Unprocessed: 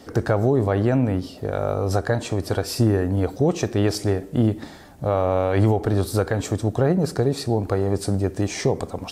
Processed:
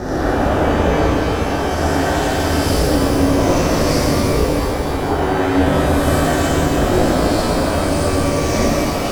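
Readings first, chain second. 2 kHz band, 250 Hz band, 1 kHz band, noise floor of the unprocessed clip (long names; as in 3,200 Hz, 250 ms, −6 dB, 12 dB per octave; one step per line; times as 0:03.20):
+11.5 dB, +6.5 dB, +11.0 dB, −41 dBFS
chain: peak hold with a rise ahead of every peak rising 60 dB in 2.15 s
ring modulation 180 Hz
reverb with rising layers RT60 3.3 s, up +12 semitones, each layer −8 dB, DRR −8 dB
level −4.5 dB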